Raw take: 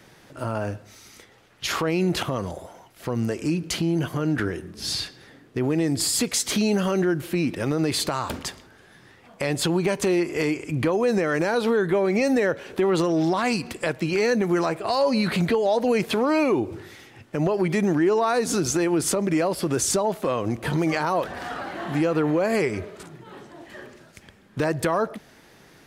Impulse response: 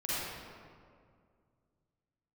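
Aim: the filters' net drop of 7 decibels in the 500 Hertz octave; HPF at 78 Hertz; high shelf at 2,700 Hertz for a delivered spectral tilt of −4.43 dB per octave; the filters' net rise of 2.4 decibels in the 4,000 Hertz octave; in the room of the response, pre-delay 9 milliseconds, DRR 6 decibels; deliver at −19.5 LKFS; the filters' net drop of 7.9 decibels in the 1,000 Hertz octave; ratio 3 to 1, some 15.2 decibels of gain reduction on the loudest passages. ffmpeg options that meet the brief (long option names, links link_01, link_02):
-filter_complex "[0:a]highpass=78,equalizer=frequency=500:width_type=o:gain=-7.5,equalizer=frequency=1000:width_type=o:gain=-7.5,highshelf=frequency=2700:gain=-5,equalizer=frequency=4000:width_type=o:gain=7.5,acompressor=threshold=-43dB:ratio=3,asplit=2[link_01][link_02];[1:a]atrim=start_sample=2205,adelay=9[link_03];[link_02][link_03]afir=irnorm=-1:irlink=0,volume=-12.5dB[link_04];[link_01][link_04]amix=inputs=2:normalize=0,volume=21dB"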